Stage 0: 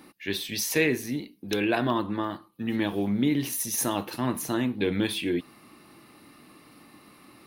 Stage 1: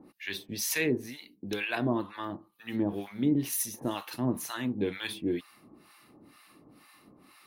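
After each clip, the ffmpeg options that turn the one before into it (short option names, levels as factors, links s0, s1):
-filter_complex "[0:a]acrossover=split=850[s0][s1];[s0]aeval=exprs='val(0)*(1-1/2+1/2*cos(2*PI*2.1*n/s))':c=same[s2];[s1]aeval=exprs='val(0)*(1-1/2-1/2*cos(2*PI*2.1*n/s))':c=same[s3];[s2][s3]amix=inputs=2:normalize=0"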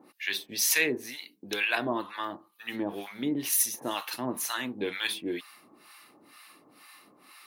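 -af "highpass=f=910:p=1,volume=2.11"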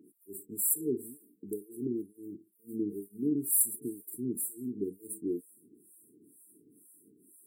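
-af "afftfilt=real='re*(1-between(b*sr/4096,460,7300))':imag='im*(1-between(b*sr/4096,460,7300))':win_size=4096:overlap=0.75"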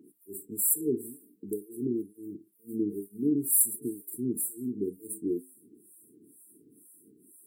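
-af "flanger=delay=8.1:depth=1.5:regen=-80:speed=0.45:shape=triangular,volume=2.37"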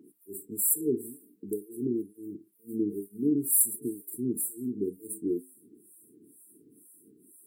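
-af "equalizer=f=1100:t=o:w=2.4:g=2.5"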